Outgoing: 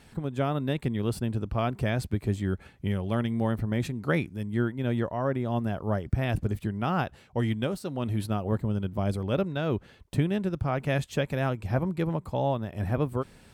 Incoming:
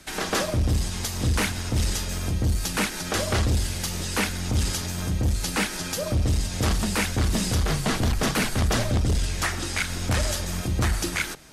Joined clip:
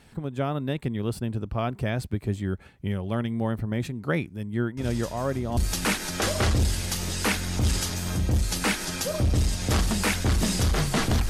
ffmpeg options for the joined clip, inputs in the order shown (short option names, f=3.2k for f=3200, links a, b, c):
-filter_complex "[1:a]asplit=2[a][b];[0:a]apad=whole_dur=11.29,atrim=end=11.29,atrim=end=5.572[c];[b]atrim=start=2.488:end=8.21[d];[a]atrim=start=1.69:end=2.49,asetpts=PTS-STARTPTS,volume=-12dB,afade=t=in:d=0.004:c=hsin,afade=t=out:st=0.796:d=0.004:c=hsin,adelay=210357S[e];[c][d]acrossfade=d=0.004:c1=hsin:c2=hsin[f];[f][e]amix=inputs=2:normalize=0"